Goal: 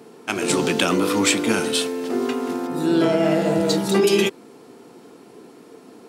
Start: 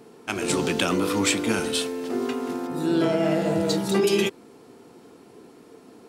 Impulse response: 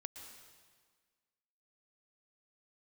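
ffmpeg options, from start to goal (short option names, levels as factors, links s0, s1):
-af "highpass=130,volume=1.58"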